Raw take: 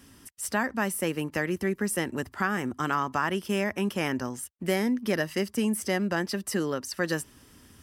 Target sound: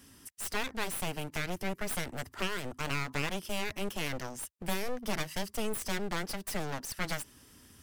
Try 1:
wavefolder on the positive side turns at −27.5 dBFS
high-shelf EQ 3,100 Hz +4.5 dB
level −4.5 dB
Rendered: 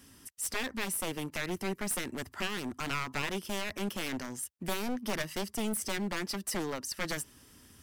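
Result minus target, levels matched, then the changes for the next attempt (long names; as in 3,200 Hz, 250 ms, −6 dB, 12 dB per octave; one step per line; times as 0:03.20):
wavefolder on the positive side: distortion −24 dB
change: wavefolder on the positive side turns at −37 dBFS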